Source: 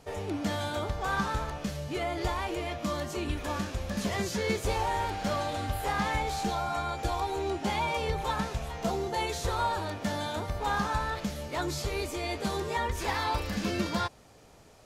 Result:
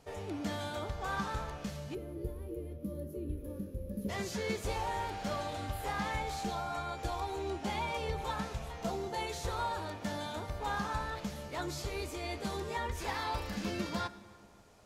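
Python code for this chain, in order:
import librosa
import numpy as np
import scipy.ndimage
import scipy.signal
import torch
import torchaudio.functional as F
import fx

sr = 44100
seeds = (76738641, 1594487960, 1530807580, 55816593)

y = fx.spec_box(x, sr, start_s=1.95, length_s=2.14, low_hz=590.0, high_hz=10000.0, gain_db=-24)
y = fx.rev_plate(y, sr, seeds[0], rt60_s=2.3, hf_ratio=0.6, predelay_ms=0, drr_db=14.0)
y = F.gain(torch.from_numpy(y), -6.0).numpy()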